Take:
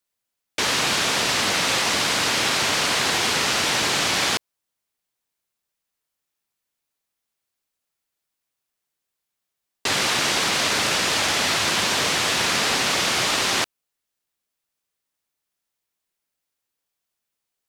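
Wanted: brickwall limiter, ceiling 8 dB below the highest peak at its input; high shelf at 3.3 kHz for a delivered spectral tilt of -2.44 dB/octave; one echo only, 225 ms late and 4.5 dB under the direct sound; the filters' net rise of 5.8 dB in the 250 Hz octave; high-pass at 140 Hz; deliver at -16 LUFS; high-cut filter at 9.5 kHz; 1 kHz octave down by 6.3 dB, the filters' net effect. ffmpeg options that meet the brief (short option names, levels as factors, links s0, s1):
-af "highpass=140,lowpass=9500,equalizer=f=250:t=o:g=8.5,equalizer=f=1000:t=o:g=-8,highshelf=f=3300:g=-7.5,alimiter=limit=0.112:level=0:latency=1,aecho=1:1:225:0.596,volume=3.16"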